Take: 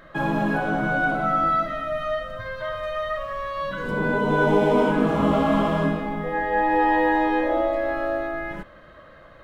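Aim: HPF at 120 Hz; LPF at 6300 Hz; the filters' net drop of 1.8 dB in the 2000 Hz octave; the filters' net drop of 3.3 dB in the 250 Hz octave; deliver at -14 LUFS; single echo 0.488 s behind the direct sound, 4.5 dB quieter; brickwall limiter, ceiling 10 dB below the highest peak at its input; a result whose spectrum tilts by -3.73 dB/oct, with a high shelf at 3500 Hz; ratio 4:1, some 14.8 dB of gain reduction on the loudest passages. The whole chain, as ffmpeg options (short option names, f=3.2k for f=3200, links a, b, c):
-af "highpass=120,lowpass=6.3k,equalizer=f=250:t=o:g=-4,equalizer=f=2k:t=o:g=-4.5,highshelf=f=3.5k:g=8,acompressor=threshold=-35dB:ratio=4,alimiter=level_in=9.5dB:limit=-24dB:level=0:latency=1,volume=-9.5dB,aecho=1:1:488:0.596,volume=26dB"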